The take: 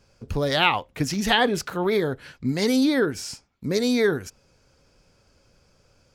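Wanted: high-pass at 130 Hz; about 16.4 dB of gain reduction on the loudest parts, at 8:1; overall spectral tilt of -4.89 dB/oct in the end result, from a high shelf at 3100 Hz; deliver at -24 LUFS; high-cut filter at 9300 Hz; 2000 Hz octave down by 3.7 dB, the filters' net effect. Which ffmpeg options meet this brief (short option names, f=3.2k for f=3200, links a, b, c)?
-af "highpass=130,lowpass=9.3k,equalizer=f=2k:t=o:g=-3.5,highshelf=f=3.1k:g=-3.5,acompressor=threshold=-35dB:ratio=8,volume=15dB"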